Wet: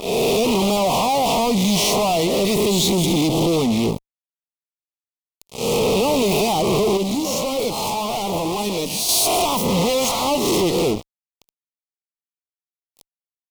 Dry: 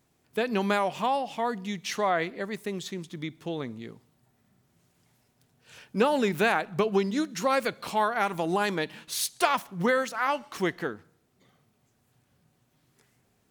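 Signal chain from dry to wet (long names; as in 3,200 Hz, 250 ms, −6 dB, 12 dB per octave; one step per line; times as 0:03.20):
peak hold with a rise ahead of every peak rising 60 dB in 0.74 s
downward compressor, threshold −30 dBFS, peak gain reduction 14 dB
fuzz pedal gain 49 dB, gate −50 dBFS
0:06.97–0:09.09: flanger 1.8 Hz, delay 3.9 ms, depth 8.3 ms, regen +69%
Butterworth band-reject 1,600 Hz, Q 0.98
level −2.5 dB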